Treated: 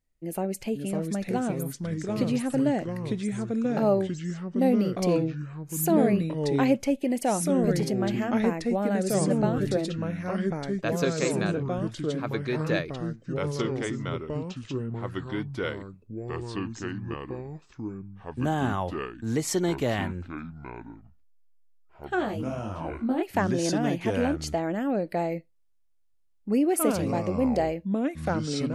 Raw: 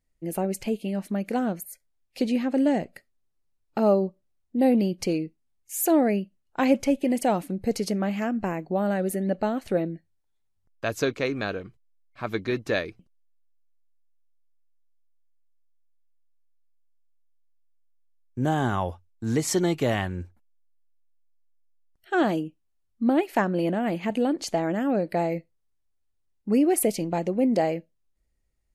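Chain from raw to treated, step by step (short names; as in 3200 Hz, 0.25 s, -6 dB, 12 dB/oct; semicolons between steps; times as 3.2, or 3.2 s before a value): echoes that change speed 0.484 s, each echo -3 st, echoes 3; 22.15–23.22 detuned doubles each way 36 cents -> 50 cents; gain -2.5 dB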